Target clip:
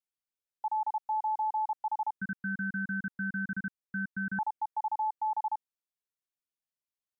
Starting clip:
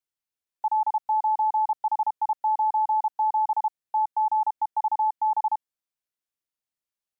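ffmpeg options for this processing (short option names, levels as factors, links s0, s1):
-filter_complex "[0:a]asettb=1/sr,asplit=3[s0][s1][s2];[s0]atrim=end=2.204[s3];[s1]atrim=start=2.2:end=4.39,asetpts=PTS-STARTPTS,afade=t=in:d=0.004:c=qsin,afade=t=out:st=2.186:d=0.004:c=qsin,aeval=exprs='val(0)*sin(2*PI*670*n/s)':c=same[s4];[s2]atrim=start=4.386[s5];[s3][s4]acrossfade=d=0.004:c1=hsin:c2=qsin[s6];[s6][s5]acrossfade=d=0.004:c1=qsin:c2=hsin,volume=0.422"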